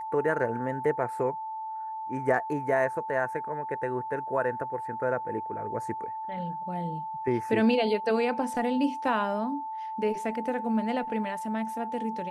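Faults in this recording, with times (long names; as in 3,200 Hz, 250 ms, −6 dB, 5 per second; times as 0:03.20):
whistle 880 Hz −33 dBFS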